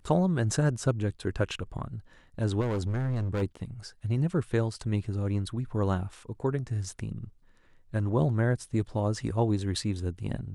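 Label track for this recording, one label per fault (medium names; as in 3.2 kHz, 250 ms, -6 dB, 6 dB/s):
2.600000	3.430000	clipped -26 dBFS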